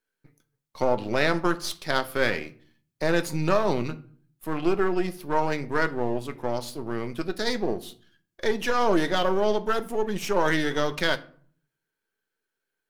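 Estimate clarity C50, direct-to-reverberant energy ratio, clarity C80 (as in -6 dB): 18.5 dB, 10.0 dB, 22.0 dB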